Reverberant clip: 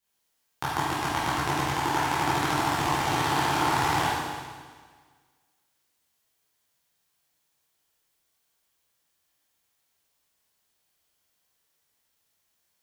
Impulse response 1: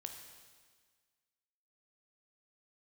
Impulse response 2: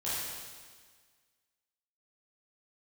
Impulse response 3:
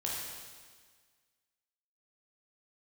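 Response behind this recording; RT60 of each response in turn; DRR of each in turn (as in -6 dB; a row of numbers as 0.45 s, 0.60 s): 2; 1.6 s, 1.6 s, 1.6 s; 4.0 dB, -11.0 dB, -4.5 dB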